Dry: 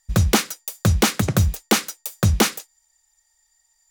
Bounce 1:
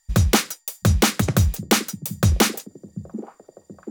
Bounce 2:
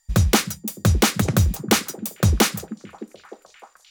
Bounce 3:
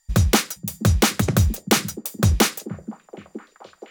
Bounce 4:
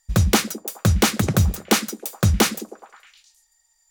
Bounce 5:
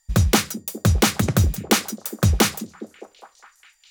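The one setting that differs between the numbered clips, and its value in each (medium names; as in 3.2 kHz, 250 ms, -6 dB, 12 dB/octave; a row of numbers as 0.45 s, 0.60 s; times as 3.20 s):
repeats whose band climbs or falls, time: 734 ms, 305 ms, 473 ms, 105 ms, 205 ms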